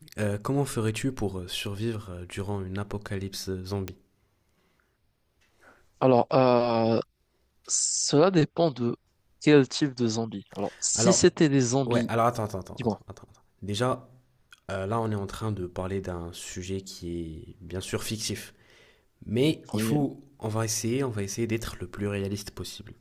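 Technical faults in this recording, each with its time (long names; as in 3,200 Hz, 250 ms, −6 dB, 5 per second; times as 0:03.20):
0:03.88: click −17 dBFS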